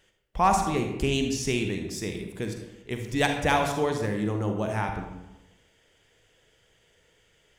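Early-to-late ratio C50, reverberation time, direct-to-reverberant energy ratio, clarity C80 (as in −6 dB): 5.0 dB, 0.95 s, 4.0 dB, 8.0 dB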